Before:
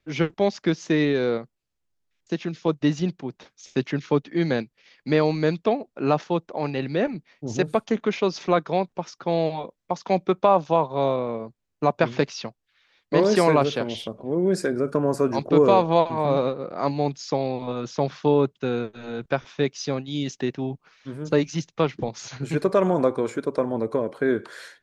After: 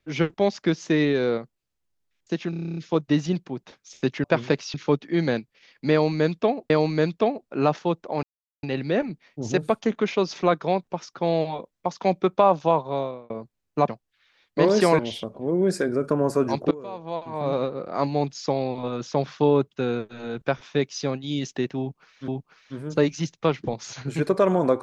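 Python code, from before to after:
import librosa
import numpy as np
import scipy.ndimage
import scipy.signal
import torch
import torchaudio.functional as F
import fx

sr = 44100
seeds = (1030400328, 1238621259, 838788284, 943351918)

y = fx.edit(x, sr, fx.stutter(start_s=2.5, slice_s=0.03, count=10),
    fx.repeat(start_s=5.15, length_s=0.78, count=2),
    fx.insert_silence(at_s=6.68, length_s=0.4),
    fx.fade_out_span(start_s=10.83, length_s=0.52),
    fx.move(start_s=11.93, length_s=0.5, to_s=3.97),
    fx.cut(start_s=13.54, length_s=0.29),
    fx.fade_in_from(start_s=15.55, length_s=1.0, curve='qua', floor_db=-22.0),
    fx.repeat(start_s=20.63, length_s=0.49, count=2), tone=tone)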